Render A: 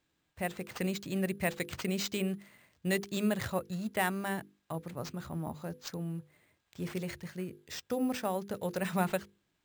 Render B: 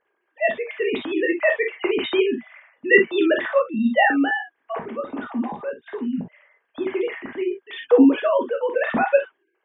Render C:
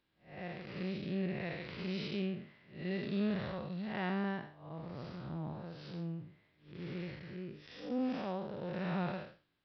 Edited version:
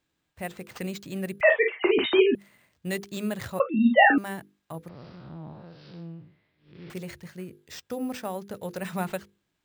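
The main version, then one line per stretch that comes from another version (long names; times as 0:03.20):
A
0:01.41–0:02.35: punch in from B
0:03.60–0:04.18: punch in from B
0:04.89–0:06.90: punch in from C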